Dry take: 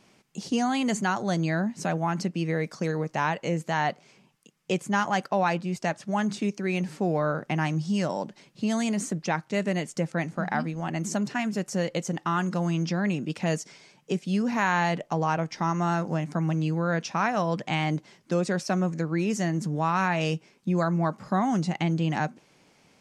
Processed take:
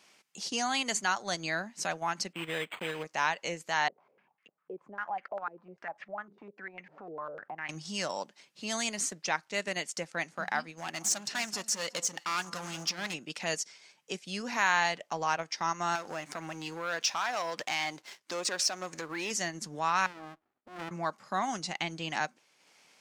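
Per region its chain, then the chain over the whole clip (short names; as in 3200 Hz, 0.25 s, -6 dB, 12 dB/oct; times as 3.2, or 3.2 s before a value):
2.33–3.04 block floating point 5-bit + synth low-pass 8000 Hz, resonance Q 14 + decimation joined by straight lines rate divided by 8×
3.88–7.69 compressor 2.5:1, threshold -41 dBFS + stepped low-pass 10 Hz 410–2100 Hz
10.77–13.14 high shelf 3300 Hz +6.5 dB + hard clip -25.5 dBFS + echo with dull and thin repeats by turns 0.184 s, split 1300 Hz, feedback 51%, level -12.5 dB
15.95–19.31 bell 180 Hz -7.5 dB 0.81 oct + compressor 2.5:1, threshold -33 dBFS + sample leveller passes 2
20.06–20.91 brick-wall FIR band-pass 230–1200 Hz + running maximum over 65 samples
whole clip: dynamic EQ 4900 Hz, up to +4 dB, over -47 dBFS, Q 1.3; HPF 1400 Hz 6 dB/oct; transient shaper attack -2 dB, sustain -6 dB; gain +2.5 dB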